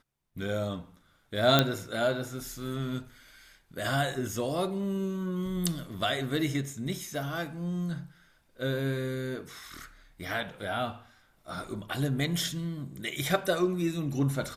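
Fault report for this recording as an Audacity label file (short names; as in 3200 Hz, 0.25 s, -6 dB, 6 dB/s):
1.590000	1.590000	pop -7 dBFS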